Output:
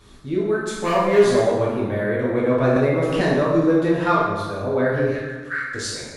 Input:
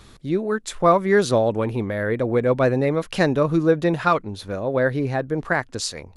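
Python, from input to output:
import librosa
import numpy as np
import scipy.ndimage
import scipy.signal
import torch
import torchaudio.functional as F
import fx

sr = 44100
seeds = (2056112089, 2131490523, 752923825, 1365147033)

y = fx.clip_hard(x, sr, threshold_db=-14.5, at=(0.73, 1.4))
y = fx.ellip_highpass(y, sr, hz=1300.0, order=4, stop_db=40, at=(5.09, 5.71))
y = fx.rev_plate(y, sr, seeds[0], rt60_s=1.4, hf_ratio=0.65, predelay_ms=0, drr_db=-7.0)
y = fx.band_squash(y, sr, depth_pct=100, at=(2.76, 3.21))
y = F.gain(torch.from_numpy(y), -7.0).numpy()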